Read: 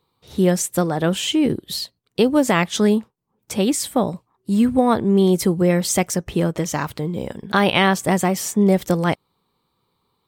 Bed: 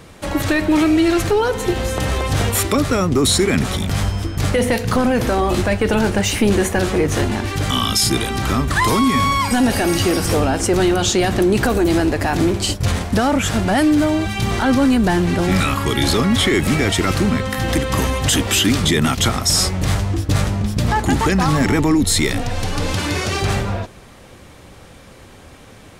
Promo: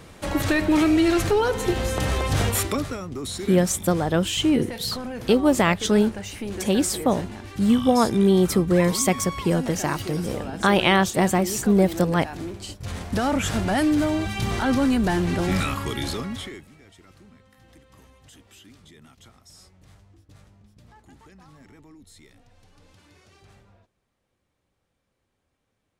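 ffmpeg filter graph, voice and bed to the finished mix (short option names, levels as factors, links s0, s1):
-filter_complex "[0:a]adelay=3100,volume=0.794[s0];[1:a]volume=2.11,afade=t=out:st=2.48:d=0.52:silence=0.237137,afade=t=in:st=12.83:d=0.45:silence=0.298538,afade=t=out:st=15.47:d=1.2:silence=0.0375837[s1];[s0][s1]amix=inputs=2:normalize=0"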